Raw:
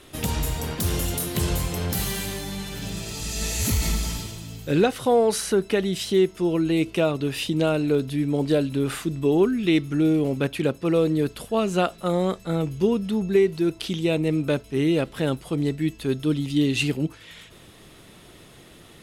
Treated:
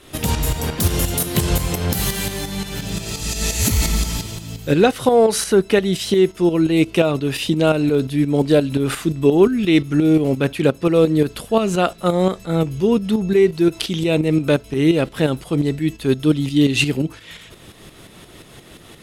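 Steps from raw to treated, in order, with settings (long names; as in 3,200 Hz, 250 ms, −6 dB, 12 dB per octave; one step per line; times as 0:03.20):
shaped tremolo saw up 5.7 Hz, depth 60%
0:13.72–0:14.52: one half of a high-frequency compander encoder only
level +8.5 dB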